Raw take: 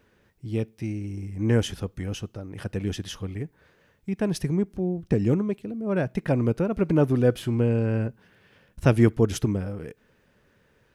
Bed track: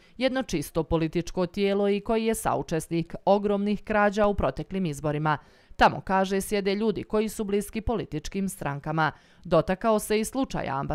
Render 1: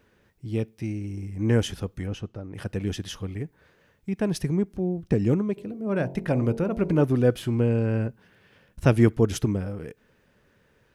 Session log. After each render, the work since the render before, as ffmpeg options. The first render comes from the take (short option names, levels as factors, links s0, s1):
-filter_complex "[0:a]asplit=3[s0][s1][s2];[s0]afade=t=out:st=2.06:d=0.02[s3];[s1]lowpass=f=2400:p=1,afade=t=in:st=2.06:d=0.02,afade=t=out:st=2.53:d=0.02[s4];[s2]afade=t=in:st=2.53:d=0.02[s5];[s3][s4][s5]amix=inputs=3:normalize=0,asplit=3[s6][s7][s8];[s6]afade=t=out:st=5.56:d=0.02[s9];[s7]bandreject=f=45.64:t=h:w=4,bandreject=f=91.28:t=h:w=4,bandreject=f=136.92:t=h:w=4,bandreject=f=182.56:t=h:w=4,bandreject=f=228.2:t=h:w=4,bandreject=f=273.84:t=h:w=4,bandreject=f=319.48:t=h:w=4,bandreject=f=365.12:t=h:w=4,bandreject=f=410.76:t=h:w=4,bandreject=f=456.4:t=h:w=4,bandreject=f=502.04:t=h:w=4,bandreject=f=547.68:t=h:w=4,bandreject=f=593.32:t=h:w=4,bandreject=f=638.96:t=h:w=4,bandreject=f=684.6:t=h:w=4,bandreject=f=730.24:t=h:w=4,bandreject=f=775.88:t=h:w=4,bandreject=f=821.52:t=h:w=4,bandreject=f=867.16:t=h:w=4,bandreject=f=912.8:t=h:w=4,bandreject=f=958.44:t=h:w=4,bandreject=f=1004.08:t=h:w=4,afade=t=in:st=5.56:d=0.02,afade=t=out:st=7.03:d=0.02[s10];[s8]afade=t=in:st=7.03:d=0.02[s11];[s9][s10][s11]amix=inputs=3:normalize=0"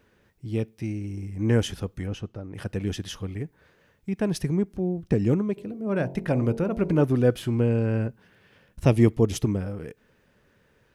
-filter_complex "[0:a]asettb=1/sr,asplit=3[s0][s1][s2];[s0]atrim=end=8.854[s3];[s1]atrim=start=8.85:end=9.44,asetpts=PTS-STARTPTS,afade=t=in:d=0.004:c=qsin,afade=t=out:st=0.586:d=0.004:c=qsin,equalizer=f=1500:t=o:w=0.29:g=-13.5[s4];[s2]atrim=start=9.436[s5];[s3][s4]acrossfade=d=0.004:c1=hsin:c2=qsin[s6];[s6][s5]acrossfade=d=0.004:c1=qsin:c2=hsin"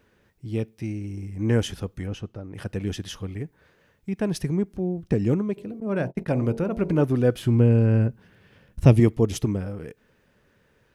-filter_complex "[0:a]asettb=1/sr,asplit=3[s0][s1][s2];[s0]atrim=end=5.804[s3];[s1]atrim=start=5.8:end=6.43,asetpts=PTS-STARTPTS,afade=t=in:d=0.004:c=qsin,afade=t=out:st=0.626:d=0.004:c=qsin,agate=range=0.0282:threshold=0.0178:ratio=16:release=100:detection=peak[s4];[s2]atrim=start=6.426[s5];[s3][s4]acrossfade=d=0.004:c1=hsin:c2=qsin[s6];[s6][s5]acrossfade=d=0.004:c1=qsin:c2=hsin,asettb=1/sr,asplit=3[s7][s8][s9];[s7]atrim=end=7.444[s10];[s8]atrim=start=7.44:end=9,asetpts=PTS-STARTPTS,afade=t=in:d=0.004:c=qsin,afade=t=out:st=1.556:d=0.004:c=qsin,lowshelf=f=250:g=8[s11];[s9]atrim=start=8.996[s12];[s10][s11]acrossfade=d=0.004:c1=hsin:c2=qsin[s13];[s13][s12]acrossfade=d=0.004:c1=qsin:c2=hsin"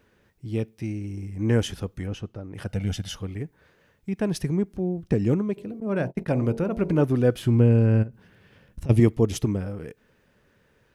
-filter_complex "[0:a]asettb=1/sr,asplit=3[s0][s1][s2];[s0]atrim=end=2.674[s3];[s1]atrim=start=2.67:end=3.16,asetpts=PTS-STARTPTS,afade=t=in:d=0.004:c=qsin,afade=t=out:st=0.486:d=0.004:c=qsin,aecho=1:1:1.4:0.7,atrim=end_sample=21609[s4];[s2]atrim=start=3.156[s5];[s3][s4]acrossfade=d=0.004:c1=hsin:c2=qsin[s6];[s6][s5]acrossfade=d=0.004:c1=qsin:c2=hsin,asplit=3[s7][s8][s9];[s7]afade=t=out:st=8.02:d=0.02[s10];[s8]acompressor=threshold=0.0282:ratio=10:attack=3.2:release=140:knee=1:detection=peak,afade=t=in:st=8.02:d=0.02,afade=t=out:st=8.89:d=0.02[s11];[s9]afade=t=in:st=8.89:d=0.02[s12];[s10][s11][s12]amix=inputs=3:normalize=0"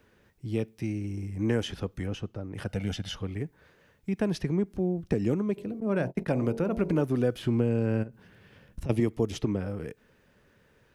-filter_complex "[0:a]acrossover=split=200|5200[s0][s1][s2];[s0]acompressor=threshold=0.0224:ratio=4[s3];[s1]acompressor=threshold=0.0631:ratio=4[s4];[s2]acompressor=threshold=0.00178:ratio=4[s5];[s3][s4][s5]amix=inputs=3:normalize=0"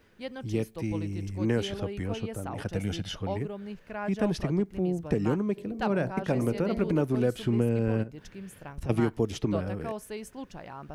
-filter_complex "[1:a]volume=0.211[s0];[0:a][s0]amix=inputs=2:normalize=0"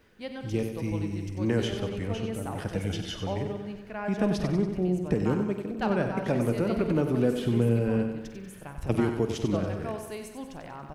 -filter_complex "[0:a]asplit=2[s0][s1];[s1]adelay=49,volume=0.237[s2];[s0][s2]amix=inputs=2:normalize=0,aecho=1:1:94|188|282|376|470|564|658:0.398|0.223|0.125|0.0699|0.0392|0.0219|0.0123"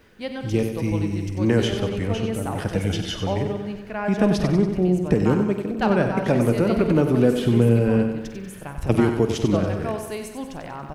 -af "volume=2.24"